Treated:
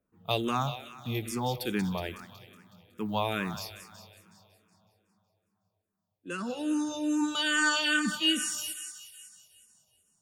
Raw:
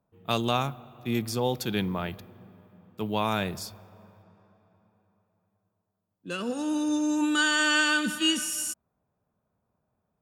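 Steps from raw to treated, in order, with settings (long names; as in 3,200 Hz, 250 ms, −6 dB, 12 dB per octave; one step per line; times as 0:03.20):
feedback echo with a high-pass in the loop 185 ms, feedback 61%, high-pass 960 Hz, level −9.5 dB
frequency shifter mixed with the dry sound −2.4 Hz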